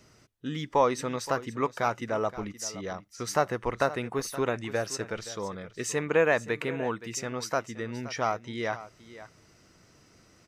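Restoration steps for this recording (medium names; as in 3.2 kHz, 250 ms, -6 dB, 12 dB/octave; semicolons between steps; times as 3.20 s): inverse comb 522 ms -15.5 dB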